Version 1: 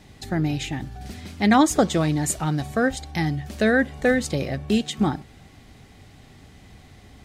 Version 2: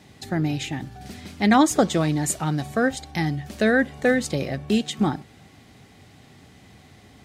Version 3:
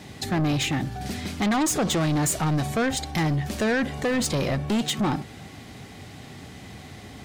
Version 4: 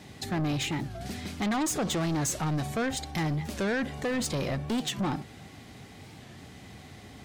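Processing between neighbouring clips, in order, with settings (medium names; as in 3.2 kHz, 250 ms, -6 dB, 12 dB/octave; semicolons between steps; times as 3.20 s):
high-pass 98 Hz 12 dB/octave
peak limiter -16.5 dBFS, peak gain reduction 10.5 dB; saturation -28 dBFS, distortion -9 dB; trim +8 dB
warped record 45 rpm, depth 160 cents; trim -5.5 dB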